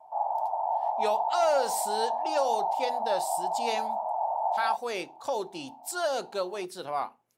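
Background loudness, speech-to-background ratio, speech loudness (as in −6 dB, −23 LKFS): −30.0 LKFS, −2.0 dB, −32.0 LKFS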